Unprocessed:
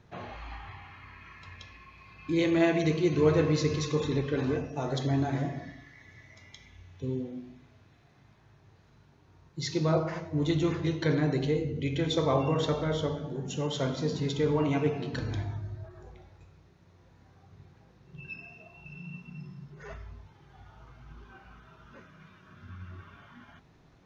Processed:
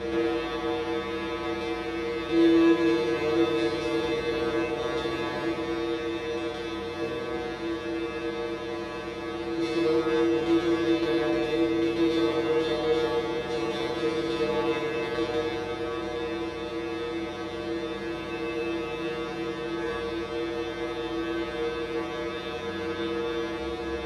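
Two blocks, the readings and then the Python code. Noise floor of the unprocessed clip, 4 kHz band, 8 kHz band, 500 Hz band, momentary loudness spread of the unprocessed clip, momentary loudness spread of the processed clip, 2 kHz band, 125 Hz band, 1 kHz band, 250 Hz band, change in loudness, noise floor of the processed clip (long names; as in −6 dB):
−60 dBFS, +5.5 dB, can't be measured, +5.5 dB, 21 LU, 8 LU, +7.5 dB, −9.0 dB, +6.0 dB, +5.0 dB, +1.0 dB, −35 dBFS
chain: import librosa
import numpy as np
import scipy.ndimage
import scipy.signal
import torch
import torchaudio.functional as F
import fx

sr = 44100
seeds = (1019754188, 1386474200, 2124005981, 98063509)

y = fx.bin_compress(x, sr, power=0.2)
y = np.repeat(scipy.signal.resample_poly(y, 1, 3), 3)[:len(y)]
y = scipy.signal.sosfilt(scipy.signal.butter(2, 5500.0, 'lowpass', fs=sr, output='sos'), y)
y = fx.bass_treble(y, sr, bass_db=-1, treble_db=-4)
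y = fx.comb_fb(y, sr, f0_hz=67.0, decay_s=0.44, harmonics='odd', damping=0.0, mix_pct=100)
y = F.gain(torch.from_numpy(y), 5.5).numpy()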